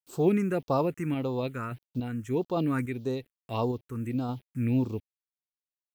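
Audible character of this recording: a quantiser's noise floor 10-bit, dither none; random-step tremolo, depth 55%; phasing stages 4, 1.7 Hz, lowest notch 670–2000 Hz

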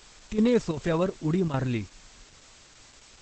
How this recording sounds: chopped level 2.6 Hz, depth 65%, duty 85%; a quantiser's noise floor 8-bit, dither triangular; Opus

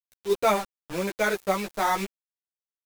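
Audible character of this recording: a quantiser's noise floor 6-bit, dither none; random-step tremolo 3.4 Hz; a shimmering, thickened sound

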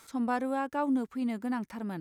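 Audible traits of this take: noise floor -63 dBFS; spectral tilt -5.5 dB/octave

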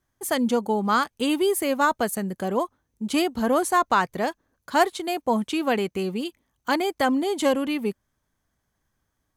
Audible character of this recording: noise floor -77 dBFS; spectral tilt -4.0 dB/octave

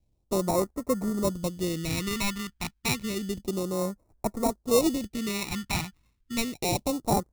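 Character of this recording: aliases and images of a low sample rate 1.6 kHz, jitter 0%; phasing stages 2, 0.3 Hz, lowest notch 500–2900 Hz

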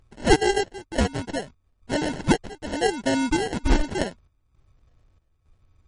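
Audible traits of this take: phasing stages 2, 0.74 Hz, lowest notch 580–1800 Hz; aliases and images of a low sample rate 1.2 kHz, jitter 0%; chopped level 1.1 Hz, depth 65%, duty 70%; MP3

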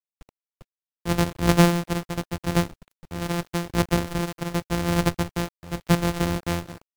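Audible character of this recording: a buzz of ramps at a fixed pitch in blocks of 256 samples; tremolo triangle 0.84 Hz, depth 80%; a quantiser's noise floor 8-bit, dither none; Vorbis

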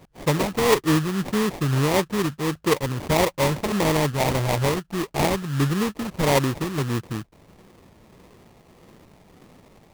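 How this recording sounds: phasing stages 12, 1.6 Hz, lowest notch 470–2200 Hz; aliases and images of a low sample rate 1.5 kHz, jitter 20%

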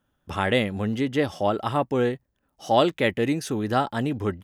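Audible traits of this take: noise floor -74 dBFS; spectral tilt -4.5 dB/octave

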